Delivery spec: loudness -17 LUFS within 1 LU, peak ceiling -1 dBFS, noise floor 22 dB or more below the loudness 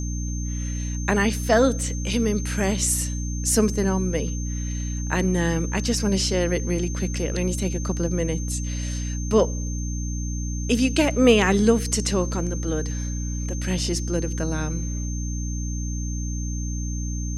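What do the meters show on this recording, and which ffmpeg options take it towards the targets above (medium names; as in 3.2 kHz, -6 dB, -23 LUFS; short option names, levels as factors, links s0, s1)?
hum 60 Hz; highest harmonic 300 Hz; hum level -25 dBFS; steady tone 6.3 kHz; tone level -36 dBFS; loudness -24.0 LUFS; peak level -3.0 dBFS; loudness target -17.0 LUFS
-> -af "bandreject=f=60:t=h:w=4,bandreject=f=120:t=h:w=4,bandreject=f=180:t=h:w=4,bandreject=f=240:t=h:w=4,bandreject=f=300:t=h:w=4"
-af "bandreject=f=6300:w=30"
-af "volume=2.24,alimiter=limit=0.891:level=0:latency=1"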